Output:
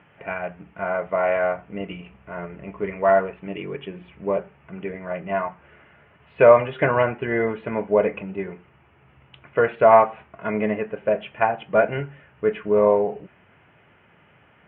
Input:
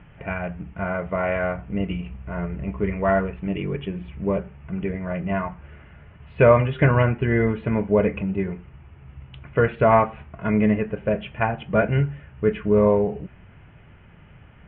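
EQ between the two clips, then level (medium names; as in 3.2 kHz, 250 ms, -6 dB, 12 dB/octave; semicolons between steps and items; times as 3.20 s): dynamic bell 720 Hz, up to +5 dB, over -31 dBFS, Q 1.4; high-pass 100 Hz; tone controls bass -11 dB, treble -4 dB; 0.0 dB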